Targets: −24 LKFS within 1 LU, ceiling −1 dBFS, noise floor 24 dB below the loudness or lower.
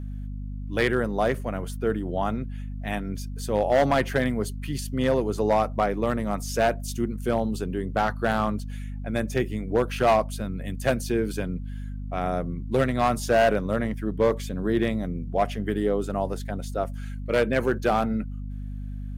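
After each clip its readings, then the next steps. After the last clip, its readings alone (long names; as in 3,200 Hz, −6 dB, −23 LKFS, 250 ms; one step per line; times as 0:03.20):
share of clipped samples 0.8%; peaks flattened at −14.0 dBFS; mains hum 50 Hz; hum harmonics up to 250 Hz; level of the hum −31 dBFS; integrated loudness −26.0 LKFS; sample peak −14.0 dBFS; target loudness −24.0 LKFS
→ clipped peaks rebuilt −14 dBFS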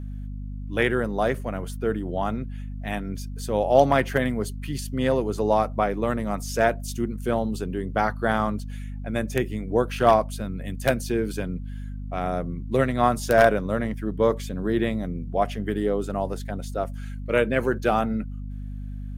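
share of clipped samples 0.0%; mains hum 50 Hz; hum harmonics up to 250 Hz; level of the hum −31 dBFS
→ mains-hum notches 50/100/150/200/250 Hz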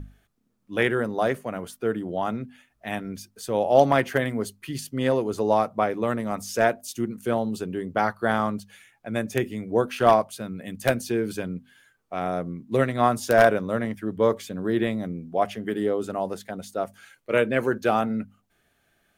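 mains hum none found; integrated loudness −25.5 LKFS; sample peak −4.5 dBFS; target loudness −24.0 LKFS
→ level +1.5 dB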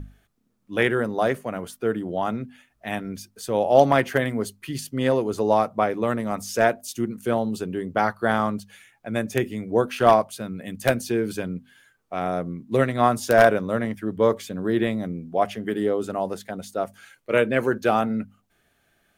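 integrated loudness −24.0 LKFS; sample peak −2.5 dBFS; background noise floor −68 dBFS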